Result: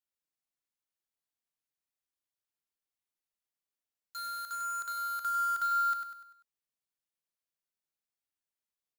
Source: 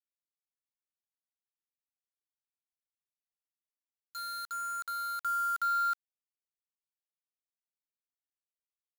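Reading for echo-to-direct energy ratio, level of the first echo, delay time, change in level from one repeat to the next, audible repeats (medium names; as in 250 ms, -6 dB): -6.5 dB, -7.5 dB, 98 ms, -7.0 dB, 4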